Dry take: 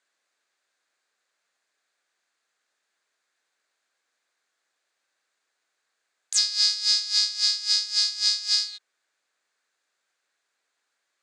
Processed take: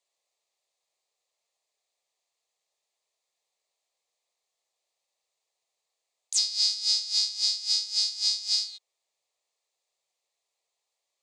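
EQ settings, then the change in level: fixed phaser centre 630 Hz, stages 4; -2.0 dB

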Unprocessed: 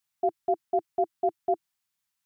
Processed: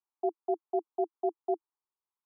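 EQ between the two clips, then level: elliptic high-pass 310 Hz; LPF 1100 Hz 24 dB/oct; fixed phaser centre 590 Hz, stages 6; 0.0 dB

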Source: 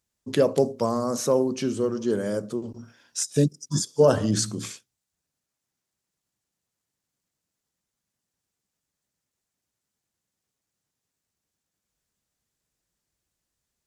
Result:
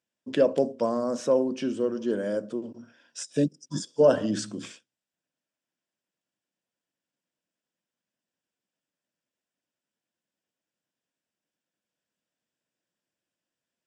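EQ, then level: air absorption 55 m; speaker cabinet 290–9500 Hz, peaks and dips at 410 Hz -8 dB, 820 Hz -8 dB, 1200 Hz -10 dB, 2100 Hz -7 dB, 4200 Hz -10 dB, 6400 Hz -7 dB; high shelf 6600 Hz -8.5 dB; +3.5 dB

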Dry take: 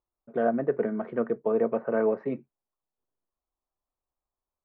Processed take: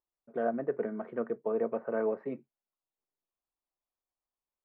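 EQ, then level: air absorption 150 m; low shelf 150 Hz -8.5 dB; -4.5 dB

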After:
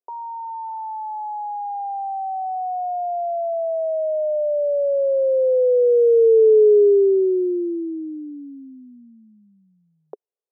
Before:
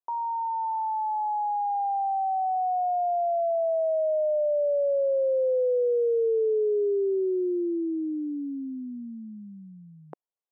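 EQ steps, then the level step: resonant high-pass 420 Hz, resonance Q 4.9; LPF 1000 Hz 12 dB/oct; -1.5 dB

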